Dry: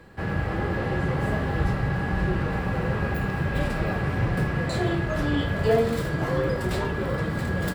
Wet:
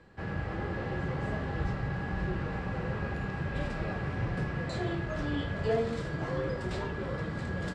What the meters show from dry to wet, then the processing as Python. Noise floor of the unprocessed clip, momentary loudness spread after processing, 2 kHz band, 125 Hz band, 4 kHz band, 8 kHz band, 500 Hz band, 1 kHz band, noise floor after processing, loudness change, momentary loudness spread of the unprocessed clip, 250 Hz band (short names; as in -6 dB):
-29 dBFS, 3 LU, -8.0 dB, -8.0 dB, -8.0 dB, under -10 dB, -8.0 dB, -8.0 dB, -37 dBFS, -8.0 dB, 3 LU, -8.0 dB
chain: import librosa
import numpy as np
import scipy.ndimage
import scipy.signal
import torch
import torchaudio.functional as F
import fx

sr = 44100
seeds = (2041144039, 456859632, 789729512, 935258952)

y = scipy.signal.sosfilt(scipy.signal.butter(4, 7600.0, 'lowpass', fs=sr, output='sos'), x)
y = F.gain(torch.from_numpy(y), -8.0).numpy()